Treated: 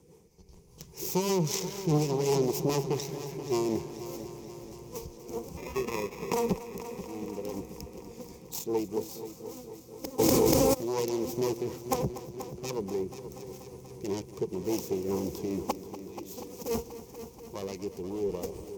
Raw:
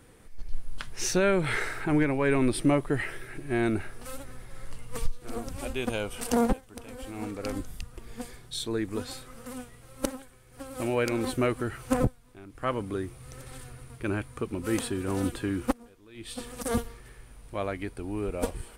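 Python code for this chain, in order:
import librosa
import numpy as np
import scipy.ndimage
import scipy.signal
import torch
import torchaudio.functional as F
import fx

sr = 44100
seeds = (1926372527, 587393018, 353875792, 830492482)

y = fx.self_delay(x, sr, depth_ms=0.97)
y = fx.band_shelf(y, sr, hz=1800.0, db=-12.5, octaves=1.7)
y = fx.sample_hold(y, sr, seeds[0], rate_hz=1500.0, jitter_pct=0, at=(5.57, 6.33))
y = scipy.signal.sosfilt(scipy.signal.butter(2, 99.0, 'highpass', fs=sr, output='sos'), y)
y = fx.rotary(y, sr, hz=5.0)
y = fx.ripple_eq(y, sr, per_octave=0.77, db=12)
y = fx.echo_heads(y, sr, ms=241, heads='first and second', feedback_pct=67, wet_db=-15.0)
y = fx.env_flatten(y, sr, amount_pct=100, at=(10.18, 10.73), fade=0.02)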